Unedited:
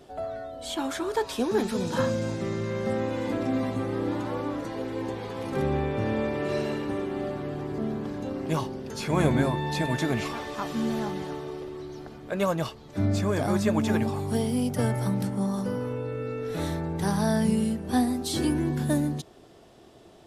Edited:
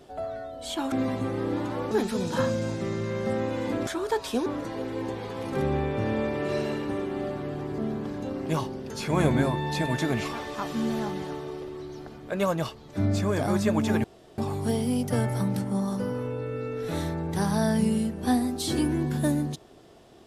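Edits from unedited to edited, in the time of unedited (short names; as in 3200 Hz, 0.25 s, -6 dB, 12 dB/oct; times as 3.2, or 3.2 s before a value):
0.92–1.51 swap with 3.47–4.46
14.04 insert room tone 0.34 s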